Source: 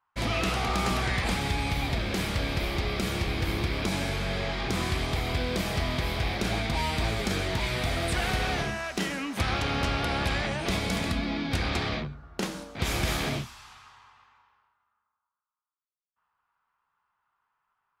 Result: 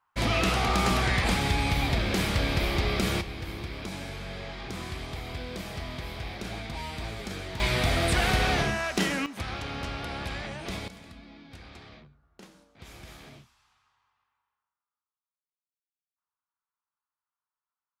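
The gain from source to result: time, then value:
+2.5 dB
from 3.21 s -8 dB
from 7.6 s +3.5 dB
from 9.26 s -7 dB
from 10.88 s -19 dB

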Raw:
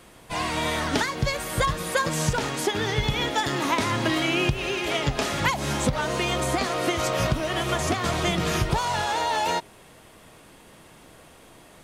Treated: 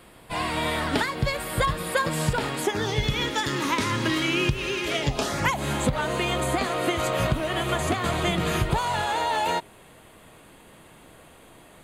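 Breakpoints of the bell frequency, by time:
bell -14 dB 0.31 oct
2.6 s 6100 Hz
3.14 s 710 Hz
4.85 s 710 Hz
5.58 s 5500 Hz

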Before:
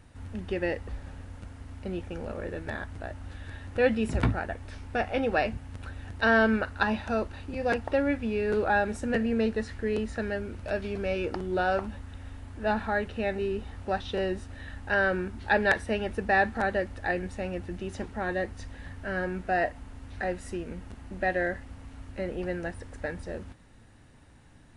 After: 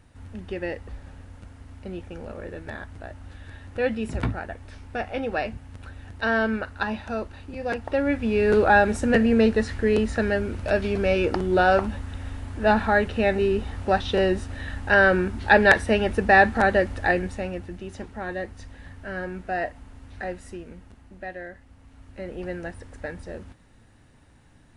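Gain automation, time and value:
7.74 s -1 dB
8.44 s +8 dB
17.06 s +8 dB
17.77 s -1 dB
20.28 s -1 dB
21.51 s -10 dB
22.46 s 0 dB

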